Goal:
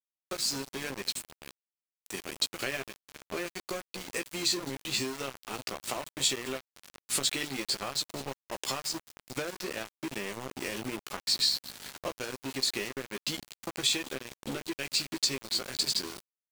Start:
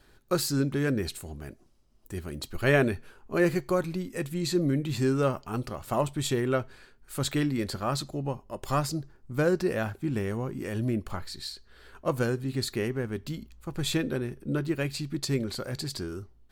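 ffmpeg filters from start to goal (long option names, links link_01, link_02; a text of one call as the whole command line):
ffmpeg -i in.wav -filter_complex "[0:a]asplit=2[link_01][link_02];[link_02]adelay=15,volume=-5.5dB[link_03];[link_01][link_03]amix=inputs=2:normalize=0,dynaudnorm=framelen=290:gausssize=11:maxgain=14.5dB,asplit=5[link_04][link_05][link_06][link_07][link_08];[link_05]adelay=203,afreqshift=-63,volume=-21dB[link_09];[link_06]adelay=406,afreqshift=-126,volume=-26.8dB[link_10];[link_07]adelay=609,afreqshift=-189,volume=-32.7dB[link_11];[link_08]adelay=812,afreqshift=-252,volume=-38.5dB[link_12];[link_04][link_09][link_10][link_11][link_12]amix=inputs=5:normalize=0,aeval=exprs='val(0)+0.0316*(sin(2*PI*50*n/s)+sin(2*PI*2*50*n/s)/2+sin(2*PI*3*50*n/s)/3+sin(2*PI*4*50*n/s)/4+sin(2*PI*5*50*n/s)/5)':channel_layout=same,highpass=300,lowpass=6200,acompressor=threshold=-29dB:ratio=10,aexciter=amount=3.7:drive=3.3:freq=2100,aeval=exprs='val(0)*gte(abs(val(0)),0.0299)':channel_layout=same,volume=-4dB" out.wav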